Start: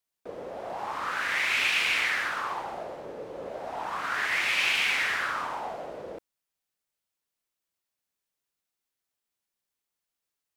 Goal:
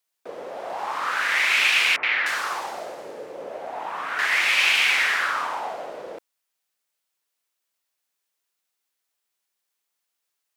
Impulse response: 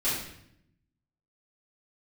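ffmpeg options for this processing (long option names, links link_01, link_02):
-filter_complex "[0:a]highpass=frequency=560:poles=1,asettb=1/sr,asplit=3[link_01][link_02][link_03];[link_01]atrim=end=1.964[link_04];[link_02]atrim=start=1.96:end=4.19,asetpts=PTS-STARTPTS,afade=type=in:duration=0.004:curve=qsin,afade=type=out:start_time=2.226:duration=0.004:curve=qsin,acrossover=split=1100|3800[link_05][link_06][link_07];[link_06]adelay=70[link_08];[link_07]adelay=300[link_09];[link_05][link_08][link_09]amix=inputs=3:normalize=0,atrim=end_sample=98343[link_10];[link_03]atrim=start=4.186[link_11];[link_04][link_10]acrossfade=duration=0.004:curve1=hsin:curve2=qsin[link_12];[link_12][link_11]acrossfade=duration=0.004:curve1=qsin:curve2=hsin,volume=6.5dB"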